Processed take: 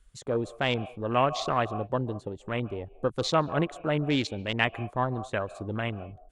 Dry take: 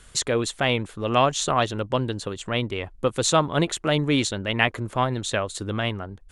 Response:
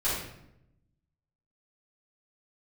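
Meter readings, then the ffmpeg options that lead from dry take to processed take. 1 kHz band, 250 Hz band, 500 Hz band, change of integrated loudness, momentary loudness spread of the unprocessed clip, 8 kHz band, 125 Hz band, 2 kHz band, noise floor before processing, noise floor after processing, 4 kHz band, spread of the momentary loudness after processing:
-4.5 dB, -4.5 dB, -4.5 dB, -5.0 dB, 7 LU, -17.0 dB, -4.5 dB, -5.5 dB, -50 dBFS, -54 dBFS, -8.0 dB, 8 LU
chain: -filter_complex "[0:a]afwtdn=0.0355,asplit=2[a][b];[b]asplit=3[c][d][e];[c]bandpass=f=730:t=q:w=8,volume=0dB[f];[d]bandpass=f=1.09k:t=q:w=8,volume=-6dB[g];[e]bandpass=f=2.44k:t=q:w=8,volume=-9dB[h];[f][g][h]amix=inputs=3:normalize=0[i];[1:a]atrim=start_sample=2205,afade=t=out:st=0.15:d=0.01,atrim=end_sample=7056,adelay=132[j];[i][j]afir=irnorm=-1:irlink=0,volume=-14.5dB[k];[a][k]amix=inputs=2:normalize=0,volume=-4.5dB"

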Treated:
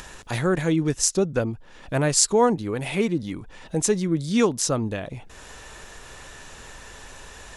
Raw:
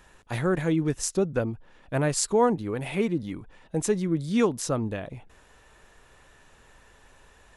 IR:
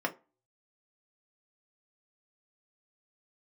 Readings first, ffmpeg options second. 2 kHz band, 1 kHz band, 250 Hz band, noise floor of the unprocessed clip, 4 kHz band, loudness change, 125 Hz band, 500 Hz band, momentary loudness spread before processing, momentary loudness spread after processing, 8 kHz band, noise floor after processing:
+4.0 dB, +3.0 dB, +2.5 dB, -57 dBFS, +8.5 dB, +4.0 dB, +2.5 dB, +2.5 dB, 13 LU, 22 LU, +8.5 dB, -45 dBFS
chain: -filter_complex "[0:a]equalizer=f=5.9k:w=0.79:g=7,asplit=2[a][b];[b]acompressor=mode=upward:threshold=-28dB:ratio=2.5,volume=2dB[c];[a][c]amix=inputs=2:normalize=0,volume=-4.5dB"

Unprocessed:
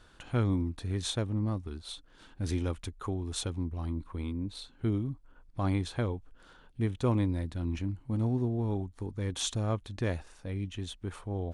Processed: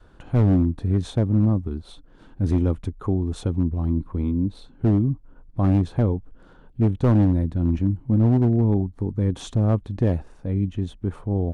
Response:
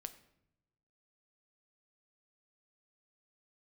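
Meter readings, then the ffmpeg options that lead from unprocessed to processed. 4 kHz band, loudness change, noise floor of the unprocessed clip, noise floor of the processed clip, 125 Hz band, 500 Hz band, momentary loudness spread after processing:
n/a, +11.0 dB, -58 dBFS, -51 dBFS, +11.5 dB, +8.5 dB, 10 LU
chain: -filter_complex "[0:a]tiltshelf=f=1.4k:g=8.5,acrossover=split=680[a][b];[a]crystalizer=i=4:c=0[c];[c][b]amix=inputs=2:normalize=0,adynamicequalizer=threshold=0.0178:dfrequency=180:dqfactor=0.92:tfrequency=180:tqfactor=0.92:attack=5:release=100:ratio=0.375:range=2.5:mode=boostabove:tftype=bell,volume=14dB,asoftclip=hard,volume=-14dB,volume=1dB"

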